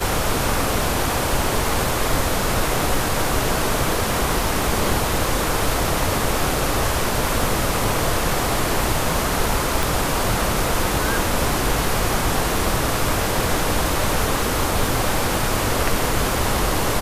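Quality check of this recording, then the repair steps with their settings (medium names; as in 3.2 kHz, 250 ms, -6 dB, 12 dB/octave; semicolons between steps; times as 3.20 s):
crackle 25 per s -27 dBFS
9.83 s: pop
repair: de-click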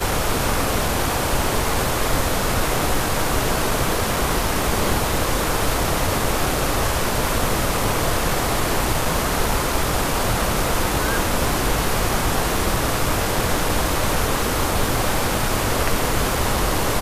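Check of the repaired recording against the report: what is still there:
9.83 s: pop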